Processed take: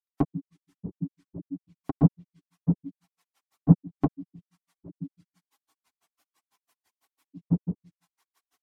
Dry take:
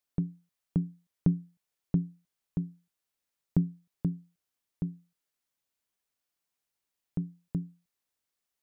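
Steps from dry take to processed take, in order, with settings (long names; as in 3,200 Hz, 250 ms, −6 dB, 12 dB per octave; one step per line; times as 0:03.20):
octave-band graphic EQ 125/250/500/1,000 Hz −3/+8/−6/+7 dB
in parallel at +1.5 dB: downward compressor, threshold −31 dBFS, peak gain reduction 13 dB
on the sum: convolution reverb RT60 0.45 s, pre-delay 3 ms, DRR −11.5 dB
reverb reduction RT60 0.51 s
low shelf with overshoot 290 Hz −7.5 dB, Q 1.5
treble cut that deepens with the level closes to 620 Hz, closed at −17.5 dBFS
high-pass filter 69 Hz
notch filter 530 Hz, Q 12
granular cloud 85 ms, grains 6 per second, pitch spread up and down by 0 semitones
level +2 dB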